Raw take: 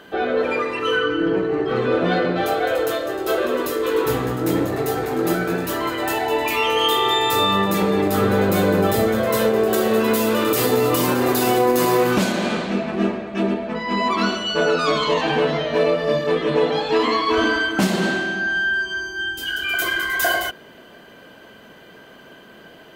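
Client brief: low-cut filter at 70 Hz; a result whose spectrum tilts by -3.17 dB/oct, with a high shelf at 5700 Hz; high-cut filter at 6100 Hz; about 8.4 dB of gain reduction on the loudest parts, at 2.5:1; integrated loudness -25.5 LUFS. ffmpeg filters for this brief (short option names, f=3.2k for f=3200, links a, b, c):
-af "highpass=70,lowpass=6.1k,highshelf=f=5.7k:g=-8,acompressor=threshold=-27dB:ratio=2.5,volume=1.5dB"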